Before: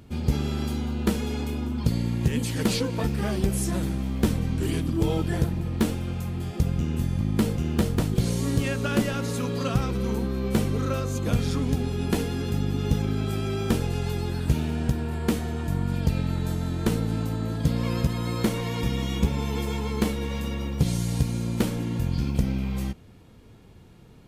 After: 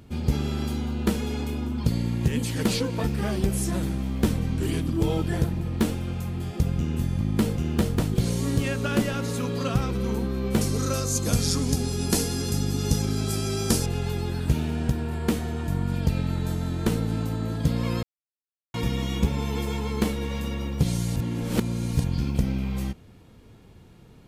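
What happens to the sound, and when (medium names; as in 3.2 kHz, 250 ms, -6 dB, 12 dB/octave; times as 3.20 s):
10.61–13.86 s: high-order bell 7.3 kHz +13.5 dB
18.03–18.74 s: mute
21.16–22.04 s: reverse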